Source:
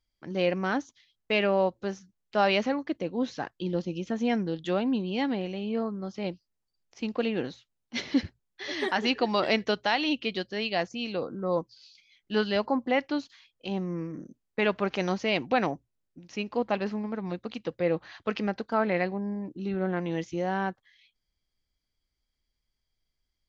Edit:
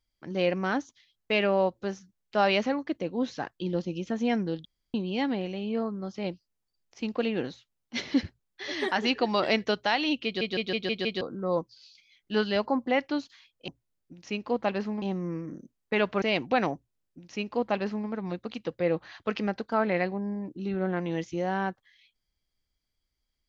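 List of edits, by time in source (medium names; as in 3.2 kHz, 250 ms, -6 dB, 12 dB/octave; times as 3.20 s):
4.65–4.94 s: room tone
10.25 s: stutter in place 0.16 s, 6 plays
14.88–15.22 s: delete
15.74–17.08 s: copy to 13.68 s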